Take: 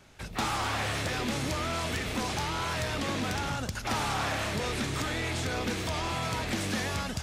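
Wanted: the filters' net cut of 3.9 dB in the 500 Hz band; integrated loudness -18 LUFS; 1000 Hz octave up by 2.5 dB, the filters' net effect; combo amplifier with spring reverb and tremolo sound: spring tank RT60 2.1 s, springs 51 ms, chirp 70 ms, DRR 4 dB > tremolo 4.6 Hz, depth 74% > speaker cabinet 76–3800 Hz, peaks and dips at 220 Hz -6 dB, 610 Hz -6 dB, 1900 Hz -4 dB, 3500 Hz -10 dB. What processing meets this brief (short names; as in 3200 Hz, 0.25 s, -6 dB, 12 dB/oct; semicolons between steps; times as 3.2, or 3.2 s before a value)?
bell 500 Hz -3 dB; bell 1000 Hz +5 dB; spring tank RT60 2.1 s, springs 51 ms, chirp 70 ms, DRR 4 dB; tremolo 4.6 Hz, depth 74%; speaker cabinet 76–3800 Hz, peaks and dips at 220 Hz -6 dB, 610 Hz -6 dB, 1900 Hz -4 dB, 3500 Hz -10 dB; gain +16 dB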